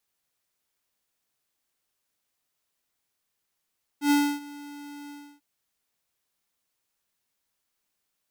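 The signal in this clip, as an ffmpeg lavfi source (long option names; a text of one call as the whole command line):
ffmpeg -f lavfi -i "aevalsrc='0.106*(2*lt(mod(289*t,1),0.5)-1)':duration=1.394:sample_rate=44100,afade=type=in:duration=0.098,afade=type=out:start_time=0.098:duration=0.287:silence=0.0794,afade=type=out:start_time=1.09:duration=0.304" out.wav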